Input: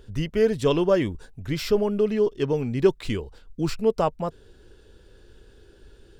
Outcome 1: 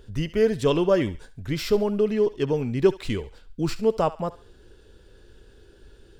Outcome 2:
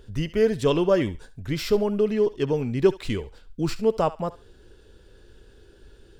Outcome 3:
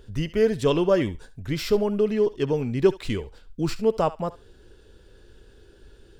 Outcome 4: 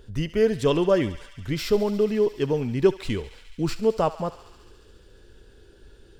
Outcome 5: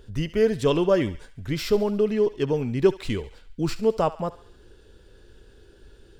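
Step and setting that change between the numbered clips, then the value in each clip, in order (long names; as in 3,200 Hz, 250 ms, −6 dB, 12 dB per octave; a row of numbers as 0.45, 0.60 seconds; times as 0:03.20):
feedback echo with a high-pass in the loop, feedback: 39, 25, 17, 88, 59%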